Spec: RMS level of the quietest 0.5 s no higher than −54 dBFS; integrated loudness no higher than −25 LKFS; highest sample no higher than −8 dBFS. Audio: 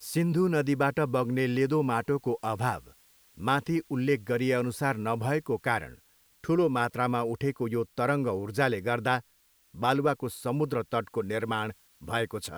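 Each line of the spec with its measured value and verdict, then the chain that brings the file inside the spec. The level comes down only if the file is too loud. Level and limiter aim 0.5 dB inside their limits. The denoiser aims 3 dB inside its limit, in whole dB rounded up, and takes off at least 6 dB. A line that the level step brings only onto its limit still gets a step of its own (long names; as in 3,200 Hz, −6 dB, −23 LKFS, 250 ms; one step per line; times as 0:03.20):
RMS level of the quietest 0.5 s −66 dBFS: in spec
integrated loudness −29.0 LKFS: in spec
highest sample −10.5 dBFS: in spec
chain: no processing needed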